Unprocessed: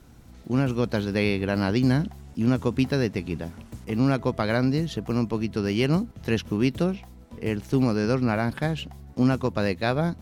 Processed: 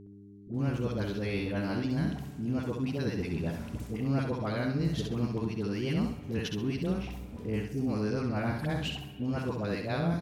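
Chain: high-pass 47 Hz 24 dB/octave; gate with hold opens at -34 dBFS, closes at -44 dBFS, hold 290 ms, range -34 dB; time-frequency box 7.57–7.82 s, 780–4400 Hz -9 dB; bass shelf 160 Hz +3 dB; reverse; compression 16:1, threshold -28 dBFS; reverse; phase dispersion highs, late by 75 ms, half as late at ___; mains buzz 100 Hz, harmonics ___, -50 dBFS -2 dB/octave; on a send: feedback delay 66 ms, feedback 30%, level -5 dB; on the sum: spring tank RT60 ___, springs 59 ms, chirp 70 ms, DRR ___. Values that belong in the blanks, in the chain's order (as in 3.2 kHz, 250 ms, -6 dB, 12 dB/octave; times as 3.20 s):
640 Hz, 4, 1.8 s, 13 dB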